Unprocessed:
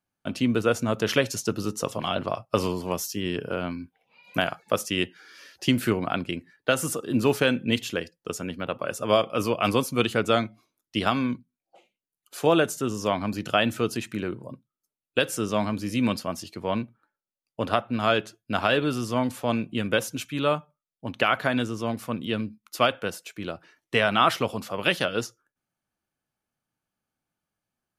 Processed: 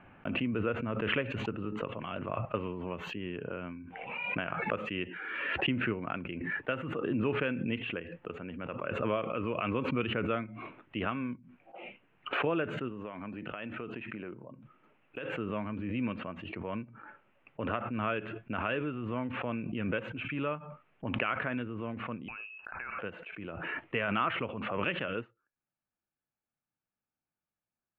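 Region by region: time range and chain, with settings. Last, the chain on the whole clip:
12.89–15.37 s: peaking EQ 62 Hz -9.5 dB 1.6 oct + compression, threshold -26 dBFS
22.28–22.99 s: high-order bell 1.5 kHz +10.5 dB 1.1 oct + compression 8:1, threshold -30 dBFS + frequency inversion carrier 2.8 kHz
whole clip: dynamic bell 750 Hz, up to -7 dB, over -41 dBFS, Q 2.7; elliptic low-pass 2.7 kHz, stop band 50 dB; swell ahead of each attack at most 27 dB/s; trim -9 dB

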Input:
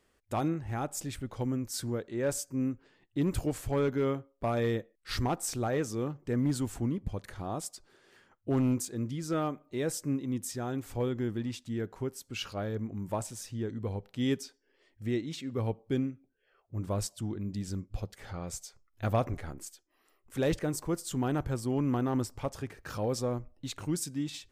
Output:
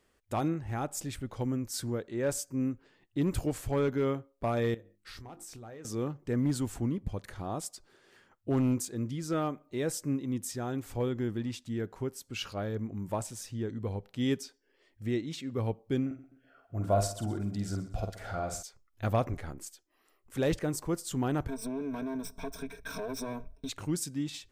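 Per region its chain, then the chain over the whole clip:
4.74–5.85 s: hum notches 50/100/150/200/250/300/350 Hz + compression 8:1, threshold -44 dBFS + doubling 26 ms -13 dB
16.06–18.63 s: doubling 49 ms -6 dB + small resonant body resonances 680/1400 Hz, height 15 dB, ringing for 35 ms + feedback delay 127 ms, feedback 40%, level -16 dB
21.48–23.69 s: comb filter that takes the minimum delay 4.4 ms + rippled EQ curve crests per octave 1.6, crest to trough 16 dB + compression, threshold -33 dBFS
whole clip: none

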